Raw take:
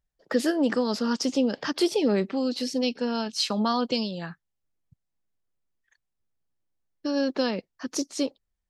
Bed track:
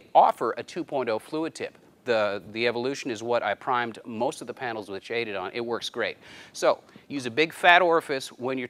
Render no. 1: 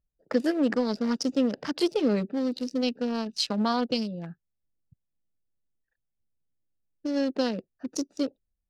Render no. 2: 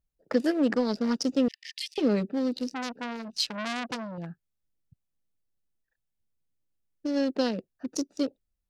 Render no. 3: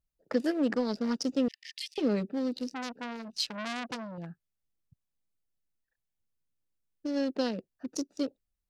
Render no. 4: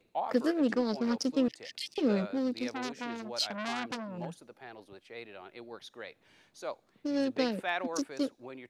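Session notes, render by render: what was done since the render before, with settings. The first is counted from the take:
Wiener smoothing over 41 samples; notch 380 Hz, Q 12
1.48–1.98 Chebyshev high-pass 1800 Hz, order 8; 2.68–4.18 core saturation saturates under 3200 Hz
gain -3.5 dB
add bed track -16.5 dB

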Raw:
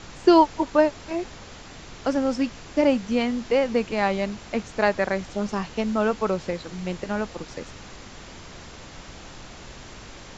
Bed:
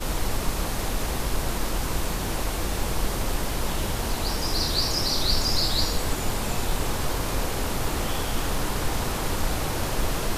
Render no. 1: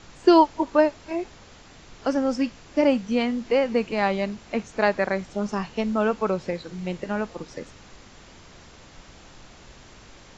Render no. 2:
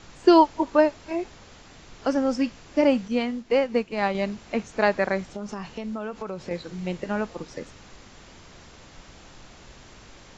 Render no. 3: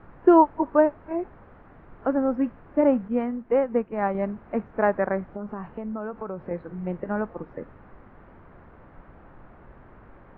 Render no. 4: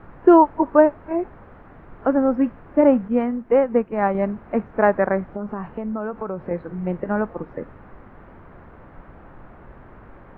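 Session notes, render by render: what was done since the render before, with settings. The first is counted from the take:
noise print and reduce 6 dB
3.08–4.15 upward expander, over -37 dBFS; 5.34–6.51 compressor, threshold -29 dBFS
LPF 1600 Hz 24 dB/oct
gain +5 dB; limiter -3 dBFS, peak gain reduction 3 dB

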